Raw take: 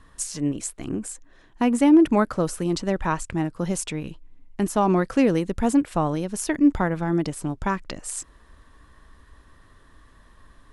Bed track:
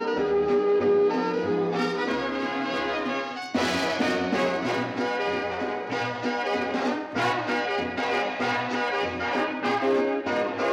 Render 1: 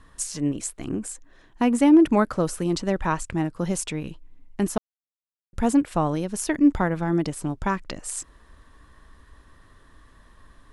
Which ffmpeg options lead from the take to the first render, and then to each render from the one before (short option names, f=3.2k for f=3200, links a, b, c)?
-filter_complex "[0:a]asplit=3[a][b][c];[a]atrim=end=4.78,asetpts=PTS-STARTPTS,afade=t=out:st=4.776:d=0.004:c=hsin[d];[b]atrim=start=4.78:end=5.53,asetpts=PTS-STARTPTS,volume=0[e];[c]atrim=start=5.53,asetpts=PTS-STARTPTS,afade=t=in:d=0.004:c=hsin[f];[d][e][f]concat=n=3:v=0:a=1"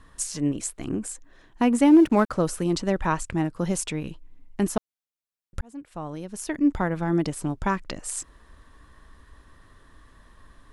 -filter_complex "[0:a]asettb=1/sr,asplit=3[a][b][c];[a]atrim=end=1.854[d];[b]atrim=start=1.85:end=2.3,asetpts=PTS-STARTPTS,afade=t=in:d=0.004:c=qsin,afade=t=out:st=0.446:d=0.004:c=qsin,aeval=exprs='sgn(val(0))*max(abs(val(0))-0.00794,0)':c=same[e];[c]atrim=start=2.296[f];[d][e]acrossfade=d=0.004:c1=hsin:c2=qsin[g];[g][f]acrossfade=d=0.004:c1=qsin:c2=hsin,asplit=2[h][i];[h]atrim=end=5.61,asetpts=PTS-STARTPTS,afade=t=out:st=5.606:d=0.004:c=hsin[j];[i]atrim=start=5.61,asetpts=PTS-STARTPTS,afade=t=in:d=1.59[k];[j][k]concat=n=2:v=0:a=1"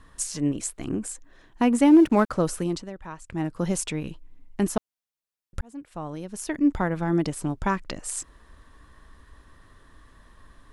-filter_complex "[0:a]asplit=3[a][b][c];[a]atrim=end=2.9,asetpts=PTS-STARTPTS,afade=t=out:st=2.58:d=0.32:silence=0.188365[d];[b]atrim=start=2.9:end=3.21,asetpts=PTS-STARTPTS,volume=-14.5dB[e];[c]atrim=start=3.21,asetpts=PTS-STARTPTS,afade=t=in:d=0.32:silence=0.188365[f];[d][e][f]concat=n=3:v=0:a=1"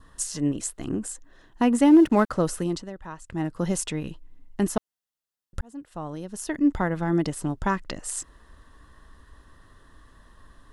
-af "bandreject=f=2.3k:w=5.3,adynamicequalizer=threshold=0.00282:dfrequency=2200:dqfactor=3.8:tfrequency=2200:tqfactor=3.8:attack=5:release=100:ratio=0.375:range=2.5:mode=boostabove:tftype=bell"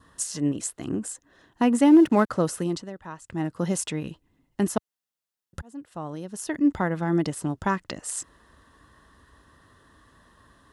-af "highpass=82"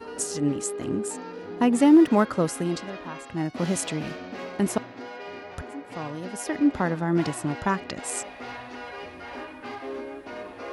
-filter_complex "[1:a]volume=-12dB[a];[0:a][a]amix=inputs=2:normalize=0"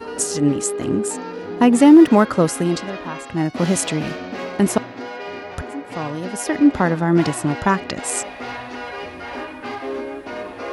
-af "volume=7.5dB,alimiter=limit=-2dB:level=0:latency=1"